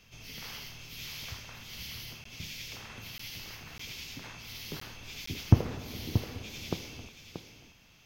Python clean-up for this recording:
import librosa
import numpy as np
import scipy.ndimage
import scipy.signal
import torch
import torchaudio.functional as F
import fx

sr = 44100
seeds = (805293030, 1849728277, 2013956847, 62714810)

y = fx.fix_declip(x, sr, threshold_db=-7.5)
y = fx.fix_interpolate(y, sr, at_s=(2.24, 3.18, 3.78, 4.8, 5.26), length_ms=14.0)
y = fx.fix_echo_inverse(y, sr, delay_ms=631, level_db=-9.0)